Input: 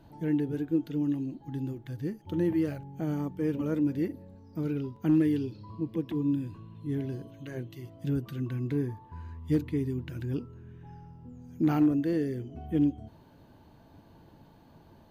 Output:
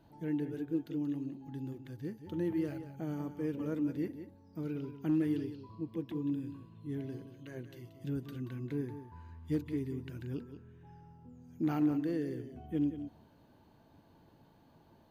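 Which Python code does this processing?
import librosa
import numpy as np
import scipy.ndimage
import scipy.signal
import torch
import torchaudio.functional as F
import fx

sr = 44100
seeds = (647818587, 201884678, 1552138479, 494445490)

p1 = fx.low_shelf(x, sr, hz=96.0, db=-6.0)
p2 = p1 + fx.echo_single(p1, sr, ms=181, db=-11.0, dry=0)
y = p2 * 10.0 ** (-6.0 / 20.0)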